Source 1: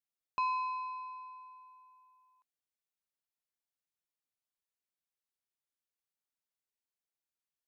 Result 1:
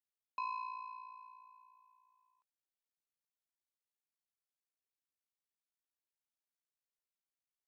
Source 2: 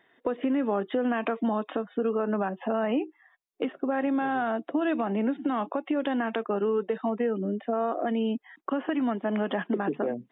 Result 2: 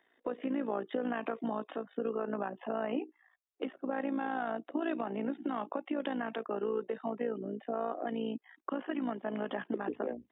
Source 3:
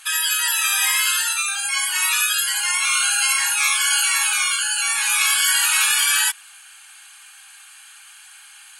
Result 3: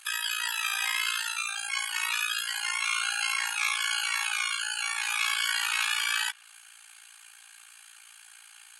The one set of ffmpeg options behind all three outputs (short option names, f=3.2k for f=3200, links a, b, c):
-filter_complex "[0:a]tremolo=f=57:d=0.75,acrossover=split=100|5100[a][b][c];[b]highpass=f=190:w=0.5412,highpass=f=190:w=1.3066[d];[c]acompressor=threshold=-34dB:ratio=6[e];[a][d][e]amix=inputs=3:normalize=0,volume=-4dB"